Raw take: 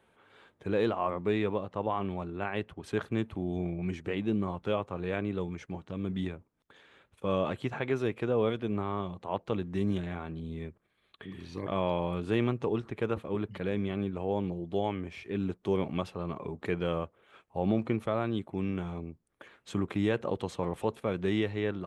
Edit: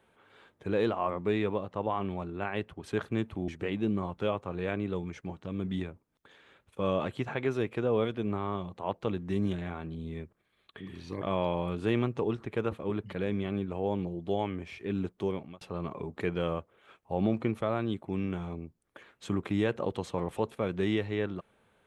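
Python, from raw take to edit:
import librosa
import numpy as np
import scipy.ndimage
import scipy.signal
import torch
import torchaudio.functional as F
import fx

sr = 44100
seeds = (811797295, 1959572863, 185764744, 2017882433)

y = fx.edit(x, sr, fx.cut(start_s=3.48, length_s=0.45),
    fx.fade_out_span(start_s=15.6, length_s=0.46), tone=tone)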